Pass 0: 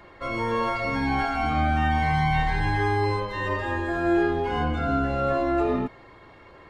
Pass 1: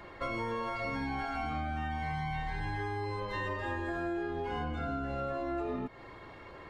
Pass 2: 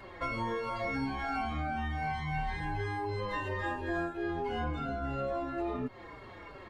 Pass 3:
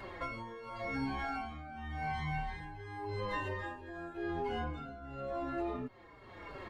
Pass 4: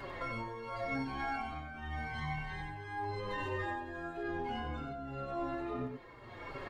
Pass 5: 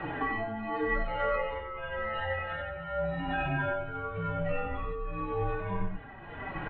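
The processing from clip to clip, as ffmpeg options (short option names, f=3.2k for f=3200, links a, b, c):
-af "acompressor=threshold=-32dB:ratio=12"
-filter_complex "[0:a]asplit=2[a][b];[b]adelay=4.7,afreqshift=-2.9[c];[a][c]amix=inputs=2:normalize=1,volume=4dB"
-filter_complex "[0:a]asplit=2[a][b];[b]acompressor=threshold=-42dB:ratio=6,volume=2dB[c];[a][c]amix=inputs=2:normalize=0,tremolo=f=0.9:d=0.73,volume=-4.5dB"
-filter_complex "[0:a]alimiter=level_in=9dB:limit=-24dB:level=0:latency=1:release=11,volume=-9dB,flanger=delay=7.1:depth=1.5:regen=47:speed=1.2:shape=sinusoidal,asplit=2[a][b];[b]aecho=0:1:94:0.501[c];[a][c]amix=inputs=2:normalize=0,volume=6dB"
-af "asubboost=boost=6:cutoff=190,highpass=f=240:t=q:w=0.5412,highpass=f=240:t=q:w=1.307,lowpass=f=3.2k:t=q:w=0.5176,lowpass=f=3.2k:t=q:w=0.7071,lowpass=f=3.2k:t=q:w=1.932,afreqshift=-240,bandreject=f=50:t=h:w=6,bandreject=f=100:t=h:w=6,volume=9dB"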